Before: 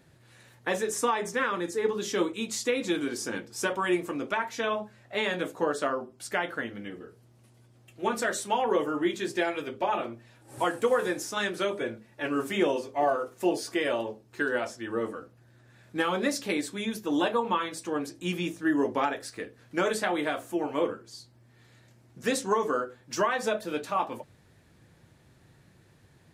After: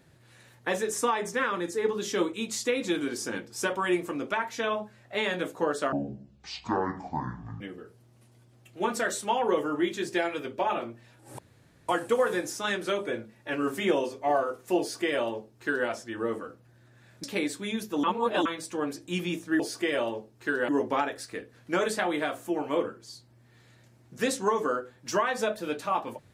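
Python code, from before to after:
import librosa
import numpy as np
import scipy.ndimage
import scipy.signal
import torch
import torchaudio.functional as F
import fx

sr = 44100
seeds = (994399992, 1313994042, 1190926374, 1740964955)

y = fx.edit(x, sr, fx.speed_span(start_s=5.92, length_s=0.91, speed=0.54),
    fx.insert_room_tone(at_s=10.61, length_s=0.5),
    fx.duplicate(start_s=13.52, length_s=1.09, to_s=18.73),
    fx.cut(start_s=15.96, length_s=0.41),
    fx.reverse_span(start_s=17.17, length_s=0.42), tone=tone)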